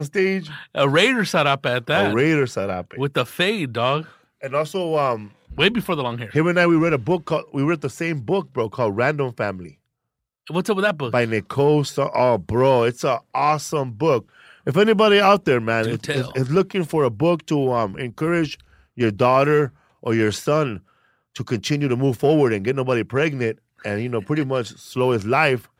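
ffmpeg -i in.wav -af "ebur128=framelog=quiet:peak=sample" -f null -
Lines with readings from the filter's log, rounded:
Integrated loudness:
  I:         -20.4 LUFS
  Threshold: -30.7 LUFS
Loudness range:
  LRA:         3.9 LU
  Threshold: -40.9 LUFS
  LRA low:   -22.7 LUFS
  LRA high:  -18.8 LUFS
Sample peak:
  Peak:       -2.3 dBFS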